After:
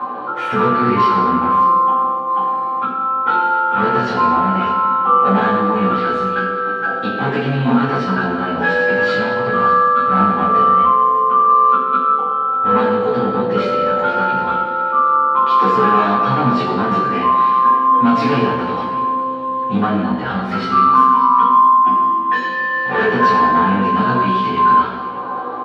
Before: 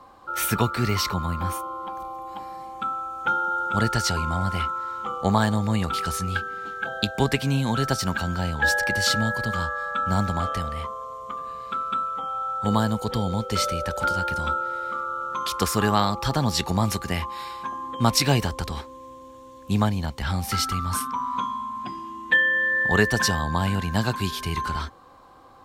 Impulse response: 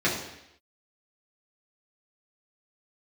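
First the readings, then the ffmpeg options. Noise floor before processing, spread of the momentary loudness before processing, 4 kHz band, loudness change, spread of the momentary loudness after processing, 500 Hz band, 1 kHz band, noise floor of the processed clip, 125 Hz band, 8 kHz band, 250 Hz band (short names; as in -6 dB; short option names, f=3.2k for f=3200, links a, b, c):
-45 dBFS, 12 LU, -2.5 dB, +10.0 dB, 8 LU, +11.0 dB, +15.0 dB, -23 dBFS, +0.5 dB, under -15 dB, +8.5 dB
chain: -filter_complex "[0:a]equalizer=f=510:w=0.43:g=6.5,acompressor=mode=upward:threshold=-21dB:ratio=2.5,volume=17dB,asoftclip=hard,volume=-17dB,flanger=delay=9.2:depth=6.1:regen=-66:speed=0.1:shape=triangular,highpass=260,lowpass=2.7k,asplit=2[a][b];[b]adelay=16,volume=-3dB[c];[a][c]amix=inputs=2:normalize=0,aecho=1:1:598:0.133[d];[1:a]atrim=start_sample=2205,asetrate=29988,aresample=44100[e];[d][e]afir=irnorm=-1:irlink=0,volume=-6.5dB"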